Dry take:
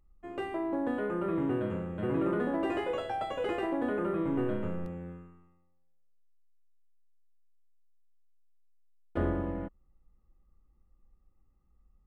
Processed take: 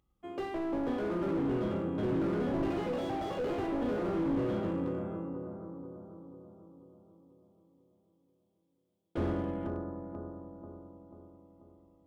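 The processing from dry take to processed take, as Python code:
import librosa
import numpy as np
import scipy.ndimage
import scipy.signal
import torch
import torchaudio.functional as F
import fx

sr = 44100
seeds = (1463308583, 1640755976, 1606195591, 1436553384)

y = scipy.signal.sosfilt(scipy.signal.butter(2, 86.0, 'highpass', fs=sr, output='sos'), x)
y = fx.peak_eq(y, sr, hz=3300.0, db=10.5, octaves=0.23)
y = fx.notch(y, sr, hz=1800.0, q=9.8)
y = fx.echo_bbd(y, sr, ms=488, stages=4096, feedback_pct=53, wet_db=-6.5)
y = fx.slew_limit(y, sr, full_power_hz=14.0)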